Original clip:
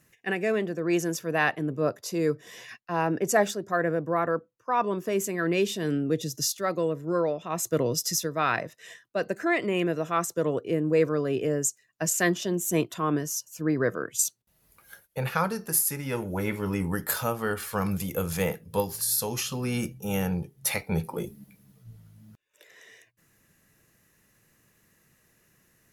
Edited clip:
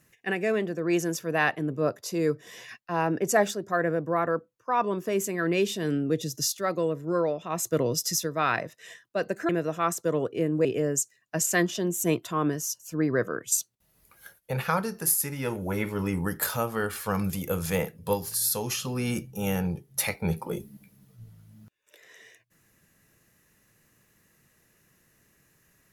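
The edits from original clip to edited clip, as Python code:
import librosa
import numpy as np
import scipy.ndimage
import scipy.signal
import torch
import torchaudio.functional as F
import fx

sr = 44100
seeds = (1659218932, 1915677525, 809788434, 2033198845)

y = fx.edit(x, sr, fx.cut(start_s=9.49, length_s=0.32),
    fx.cut(start_s=10.97, length_s=0.35), tone=tone)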